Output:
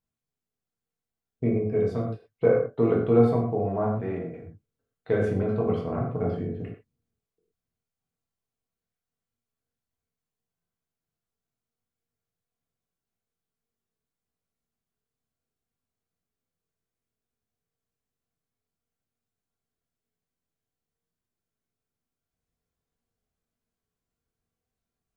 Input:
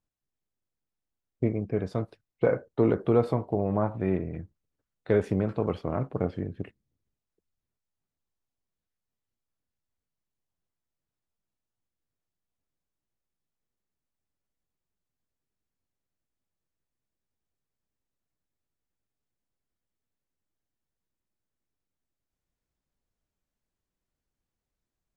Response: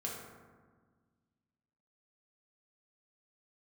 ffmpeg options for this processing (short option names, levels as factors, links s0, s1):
-filter_complex "[0:a]asettb=1/sr,asplit=3[s0][s1][s2];[s0]atrim=end=4.014[s3];[s1]atrim=start=4.01:end=4.42,asetpts=PTS-STARTPTS,afade=t=in:d=0.004:c=qsin,afade=t=out:st=0.406:d=0.004:c=qsin,lowshelf=f=210:g=-11.5[s4];[s2]atrim=start=4.416[s5];[s3][s4]acrossfade=d=0.004:c1=hsin:c2=qsin[s6];[s6][s5]acrossfade=d=0.004:c1=qsin:c2=hsin[s7];[1:a]atrim=start_sample=2205,afade=t=out:st=0.18:d=0.01,atrim=end_sample=8379[s8];[s7][s8]afir=irnorm=-1:irlink=0"